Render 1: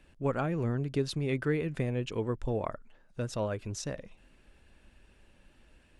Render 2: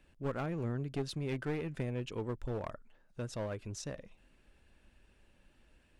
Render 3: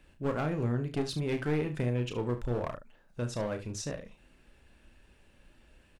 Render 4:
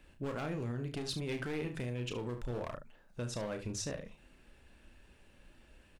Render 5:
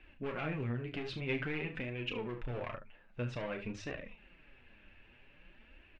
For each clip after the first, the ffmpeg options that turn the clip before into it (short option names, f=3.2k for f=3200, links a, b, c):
-af "aeval=exprs='clip(val(0),-1,0.0299)':c=same,volume=-5dB"
-af "aecho=1:1:33|72:0.422|0.224,volume=4.5dB"
-filter_complex "[0:a]bandreject=f=50:t=h:w=6,bandreject=f=100:t=h:w=6,bandreject=f=150:t=h:w=6,acrossover=split=2400[a][b];[a]alimiter=level_in=6dB:limit=-24dB:level=0:latency=1:release=125,volume=-6dB[c];[c][b]amix=inputs=2:normalize=0"
-af "flanger=delay=2.5:depth=7.9:regen=31:speed=0.51:shape=triangular,lowpass=f=2.5k:t=q:w=2.7,volume=2.5dB"